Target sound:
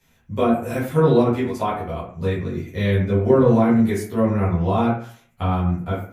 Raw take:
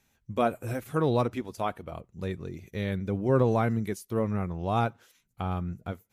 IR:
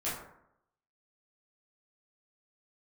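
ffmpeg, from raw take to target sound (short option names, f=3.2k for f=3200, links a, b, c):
-filter_complex "[0:a]acrossover=split=410[a][b];[b]acompressor=threshold=-30dB:ratio=6[c];[a][c]amix=inputs=2:normalize=0[d];[1:a]atrim=start_sample=2205,asetrate=66150,aresample=44100[e];[d][e]afir=irnorm=-1:irlink=0,volume=8.5dB"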